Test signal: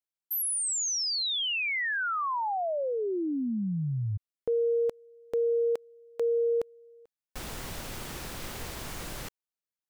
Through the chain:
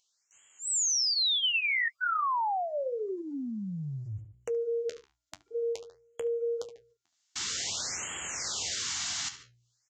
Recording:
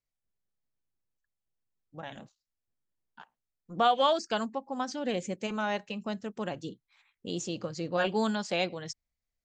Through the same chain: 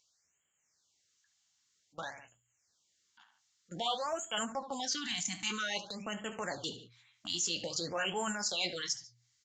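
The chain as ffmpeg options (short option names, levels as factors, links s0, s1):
-filter_complex "[0:a]agate=range=0.00447:threshold=0.00794:ratio=16:release=48:detection=rms,aderivative,aresample=16000,aresample=44100,bandreject=f=2500:w=13,apsyclip=37.6,areverse,acompressor=threshold=0.2:ratio=10:attack=0.45:release=117:knee=6:detection=peak,areverse,equalizer=f=79:w=0.64:g=12.5,asplit=2[s0][s1];[s1]adelay=72,lowpass=f=4800:p=1,volume=0.1,asplit=2[s2][s3];[s3]adelay=72,lowpass=f=4800:p=1,volume=0.22[s4];[s2][s4]amix=inputs=2:normalize=0[s5];[s0][s5]amix=inputs=2:normalize=0,flanger=delay=7.7:depth=6.7:regen=-49:speed=0.89:shape=triangular,bandreject=f=60:t=h:w=6,bandreject=f=120:t=h:w=6,acompressor=mode=upward:threshold=0.0447:ratio=2.5:attack=1.1:release=22:knee=2.83:detection=peak,afftfilt=real='re*(1-between(b*sr/1024,430*pow(4800/430,0.5+0.5*sin(2*PI*0.52*pts/sr))/1.41,430*pow(4800/430,0.5+0.5*sin(2*PI*0.52*pts/sr))*1.41))':imag='im*(1-between(b*sr/1024,430*pow(4800/430,0.5+0.5*sin(2*PI*0.52*pts/sr))/1.41,430*pow(4800/430,0.5+0.5*sin(2*PI*0.52*pts/sr))*1.41))':win_size=1024:overlap=0.75,volume=0.398"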